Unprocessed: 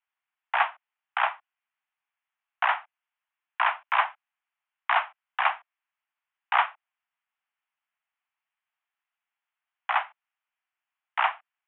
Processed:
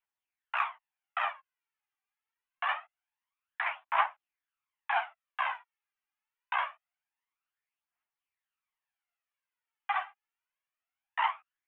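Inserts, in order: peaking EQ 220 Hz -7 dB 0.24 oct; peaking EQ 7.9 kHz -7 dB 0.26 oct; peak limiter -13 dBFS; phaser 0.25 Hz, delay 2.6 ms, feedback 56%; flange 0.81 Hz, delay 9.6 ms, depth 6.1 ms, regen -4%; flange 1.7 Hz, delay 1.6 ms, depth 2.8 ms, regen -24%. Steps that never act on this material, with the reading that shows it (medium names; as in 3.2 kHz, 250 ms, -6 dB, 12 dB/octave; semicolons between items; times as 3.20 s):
peaking EQ 220 Hz: input has nothing below 540 Hz; peaking EQ 7.9 kHz: input has nothing above 3.6 kHz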